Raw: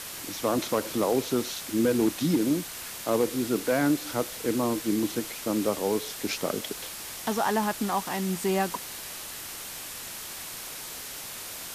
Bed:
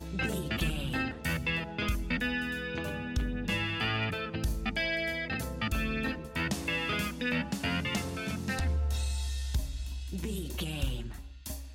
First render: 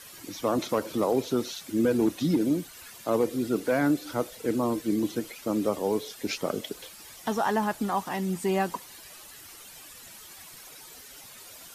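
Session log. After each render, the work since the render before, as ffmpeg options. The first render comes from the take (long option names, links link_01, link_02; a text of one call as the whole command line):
ffmpeg -i in.wav -af "afftdn=noise_reduction=12:noise_floor=-39" out.wav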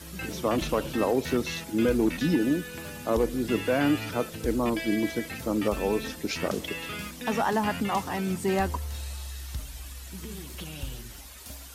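ffmpeg -i in.wav -i bed.wav -filter_complex "[1:a]volume=-4.5dB[link_01];[0:a][link_01]amix=inputs=2:normalize=0" out.wav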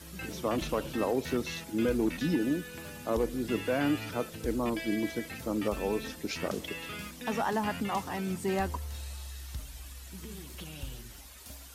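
ffmpeg -i in.wav -af "volume=-4.5dB" out.wav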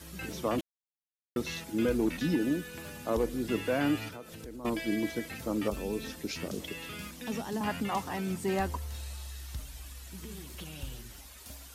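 ffmpeg -i in.wav -filter_complex "[0:a]asettb=1/sr,asplit=3[link_01][link_02][link_03];[link_01]atrim=end=4.084[link_04];[link_02]atrim=start=4.08:end=4.65,asetpts=PTS-STARTPTS,afade=type=in:duration=0.004:curve=qsin,afade=type=out:start_time=0.566:duration=0.004:curve=qsin,acompressor=threshold=-42dB:ratio=4:attack=3.2:release=140:knee=1:detection=peak[link_05];[link_03]atrim=start=4.646[link_06];[link_04][link_05]acrossfade=duration=0.004:curve1=hsin:curve2=qsin[link_07];[link_07][link_06]acrossfade=duration=0.004:curve1=qsin:curve2=hsin,asettb=1/sr,asplit=3[link_08][link_09][link_10];[link_08]atrim=end=5.704[link_11];[link_09]atrim=start=5.7:end=7.61,asetpts=PTS-STARTPTS,afade=type=in:duration=0.004:curve=qsin,afade=type=out:start_time=1.906:duration=0.004:curve=qsin,acrossover=split=430|3000[link_12][link_13][link_14];[link_13]acompressor=threshold=-43dB:ratio=6:attack=3.2:release=140:knee=2.83:detection=peak[link_15];[link_12][link_15][link_14]amix=inputs=3:normalize=0[link_16];[link_10]atrim=start=7.606[link_17];[link_11][link_16]acrossfade=duration=0.004:curve1=hsin:curve2=qsin[link_18];[link_18][link_17]acrossfade=duration=0.004:curve1=qsin:curve2=hsin,asplit=3[link_19][link_20][link_21];[link_19]atrim=end=0.61,asetpts=PTS-STARTPTS,afade=type=out:start_time=0.606:duration=0.004:curve=hsin[link_22];[link_20]atrim=start=0.61:end=1.36,asetpts=PTS-STARTPTS,volume=0[link_23];[link_21]atrim=start=1.36,asetpts=PTS-STARTPTS,afade=type=in:duration=0.004:curve=hsin[link_24];[link_22][link_23][link_24]concat=n=3:v=0:a=1" out.wav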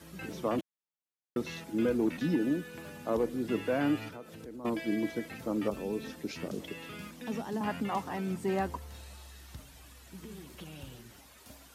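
ffmpeg -i in.wav -af "highpass=110,highshelf=frequency=2600:gain=-8" out.wav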